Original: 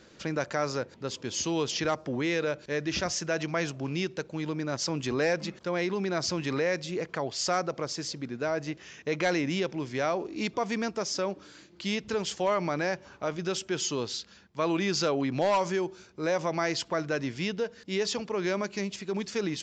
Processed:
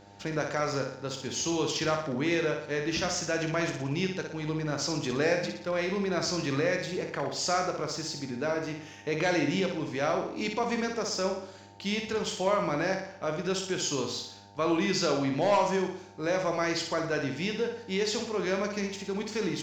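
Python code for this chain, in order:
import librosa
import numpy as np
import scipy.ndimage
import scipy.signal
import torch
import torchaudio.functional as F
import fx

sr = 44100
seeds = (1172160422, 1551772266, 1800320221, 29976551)

p1 = np.sign(x) * np.maximum(np.abs(x) - 10.0 ** (-46.5 / 20.0), 0.0)
p2 = x + F.gain(torch.from_numpy(p1), -7.5).numpy()
p3 = fx.doubler(p2, sr, ms=21.0, db=-10.5)
p4 = fx.dmg_buzz(p3, sr, base_hz=100.0, harmonics=9, level_db=-51.0, tilt_db=-1, odd_only=False)
p5 = fx.room_flutter(p4, sr, wall_m=10.1, rt60_s=0.62)
y = F.gain(torch.from_numpy(p5), -4.0).numpy()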